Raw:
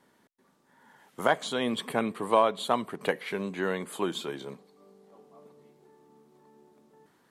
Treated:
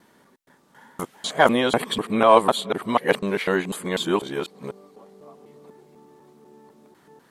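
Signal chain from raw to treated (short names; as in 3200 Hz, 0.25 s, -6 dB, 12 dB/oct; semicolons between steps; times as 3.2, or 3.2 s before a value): local time reversal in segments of 0.248 s; gain +8 dB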